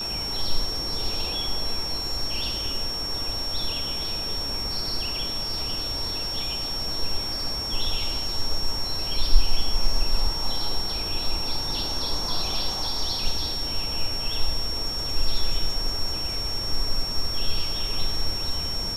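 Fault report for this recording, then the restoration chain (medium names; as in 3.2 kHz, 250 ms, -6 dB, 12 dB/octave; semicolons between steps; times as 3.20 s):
whine 5.5 kHz -28 dBFS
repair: band-stop 5.5 kHz, Q 30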